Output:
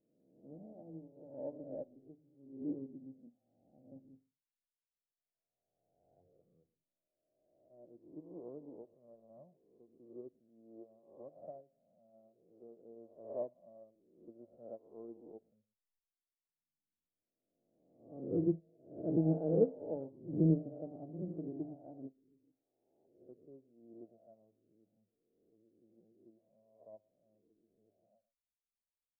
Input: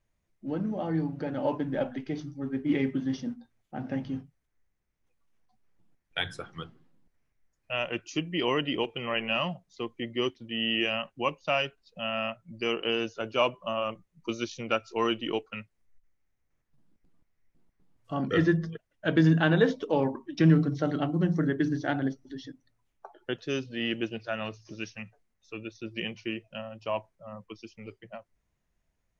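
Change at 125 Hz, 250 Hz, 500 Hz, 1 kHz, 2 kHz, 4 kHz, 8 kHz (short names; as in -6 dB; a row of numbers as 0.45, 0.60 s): -12.0 dB, -11.5 dB, -11.0 dB, -25.5 dB, under -40 dB, under -40 dB, n/a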